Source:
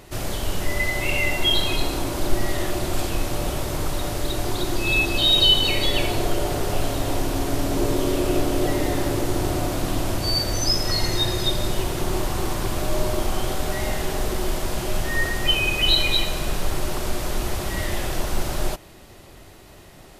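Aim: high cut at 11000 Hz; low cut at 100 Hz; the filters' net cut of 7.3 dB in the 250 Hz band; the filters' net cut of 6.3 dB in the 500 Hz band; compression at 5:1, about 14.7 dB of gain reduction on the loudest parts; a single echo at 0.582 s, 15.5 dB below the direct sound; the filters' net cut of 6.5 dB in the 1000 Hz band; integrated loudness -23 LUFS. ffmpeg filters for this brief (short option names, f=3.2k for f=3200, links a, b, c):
-af "highpass=100,lowpass=11k,equalizer=f=250:t=o:g=-8.5,equalizer=f=500:t=o:g=-3.5,equalizer=f=1k:t=o:g=-7,acompressor=threshold=-31dB:ratio=5,aecho=1:1:582:0.168,volume=10dB"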